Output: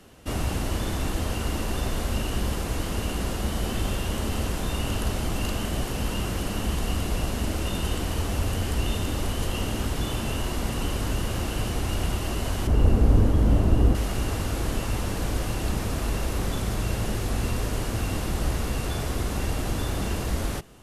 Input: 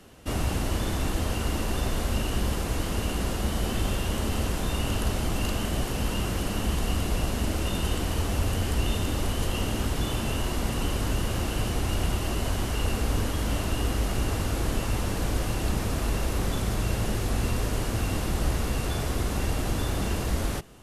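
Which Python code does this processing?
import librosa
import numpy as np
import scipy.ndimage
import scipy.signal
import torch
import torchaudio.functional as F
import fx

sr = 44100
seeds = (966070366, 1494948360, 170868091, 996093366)

y = fx.tilt_shelf(x, sr, db=9.0, hz=970.0, at=(12.67, 13.95))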